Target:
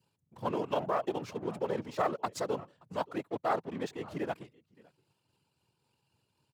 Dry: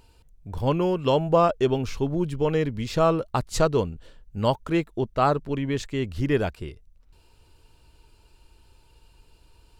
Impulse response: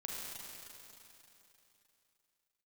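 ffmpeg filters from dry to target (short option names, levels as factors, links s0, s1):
-filter_complex "[0:a]lowshelf=f=170:g=-2.5,asplit=2[s0][s1];[s1]aecho=0:1:858:0.0794[s2];[s0][s2]amix=inputs=2:normalize=0,aeval=exprs='0.376*(cos(1*acos(clip(val(0)/0.376,-1,1)))-cos(1*PI/2))+0.15*(cos(2*acos(clip(val(0)/0.376,-1,1)))-cos(2*PI/2))+0.00422*(cos(4*acos(clip(val(0)/0.376,-1,1)))-cos(4*PI/2))':c=same,asplit=2[s3][s4];[s4]acrusher=bits=4:mix=0:aa=0.5,volume=0.501[s5];[s3][s5]amix=inputs=2:normalize=0,afftfilt=real='hypot(re,im)*cos(2*PI*random(0))':imag='hypot(re,im)*sin(2*PI*random(1))':win_size=512:overlap=0.75,alimiter=limit=0.178:level=0:latency=1:release=91,tremolo=f=2.6:d=0.28,adynamicequalizer=threshold=0.00794:dfrequency=860:dqfactor=0.77:tfrequency=860:tqfactor=0.77:attack=5:release=100:ratio=0.375:range=3.5:mode=boostabove:tftype=bell,atempo=1.5,highpass=f=110:w=0.5412,highpass=f=110:w=1.3066,volume=0.422"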